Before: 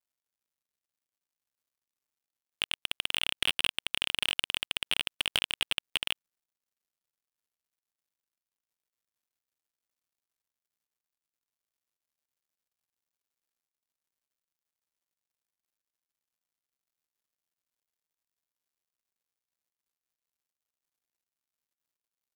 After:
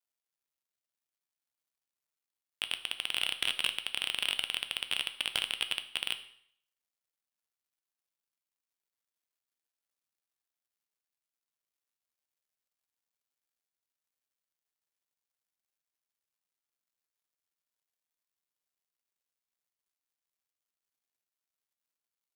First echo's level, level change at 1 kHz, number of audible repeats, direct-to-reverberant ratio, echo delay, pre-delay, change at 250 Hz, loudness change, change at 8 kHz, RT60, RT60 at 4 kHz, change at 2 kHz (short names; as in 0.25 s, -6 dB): none, -2.5 dB, none, 9.0 dB, none, 8 ms, -5.5 dB, -2.0 dB, -2.0 dB, 0.65 s, 0.60 s, -2.0 dB